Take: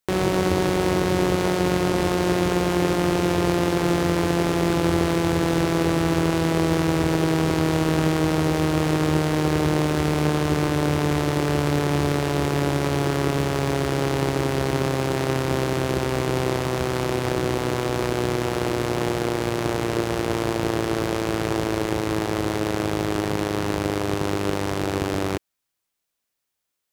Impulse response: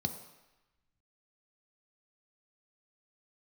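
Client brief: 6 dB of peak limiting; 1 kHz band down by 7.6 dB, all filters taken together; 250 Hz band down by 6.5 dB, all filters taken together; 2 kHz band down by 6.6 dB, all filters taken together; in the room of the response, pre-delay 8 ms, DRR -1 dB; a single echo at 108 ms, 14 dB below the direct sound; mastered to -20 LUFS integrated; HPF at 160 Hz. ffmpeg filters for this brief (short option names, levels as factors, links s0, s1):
-filter_complex "[0:a]highpass=160,equalizer=f=250:t=o:g=-8.5,equalizer=f=1000:t=o:g=-8.5,equalizer=f=2000:t=o:g=-5.5,alimiter=limit=0.158:level=0:latency=1,aecho=1:1:108:0.2,asplit=2[s0][s1];[1:a]atrim=start_sample=2205,adelay=8[s2];[s1][s2]afir=irnorm=-1:irlink=0,volume=0.891[s3];[s0][s3]amix=inputs=2:normalize=0,volume=1.41"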